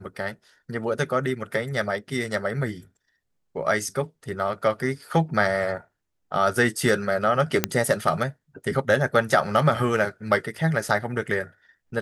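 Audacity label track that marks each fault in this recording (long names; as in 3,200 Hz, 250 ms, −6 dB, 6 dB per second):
7.640000	7.640000	click −2 dBFS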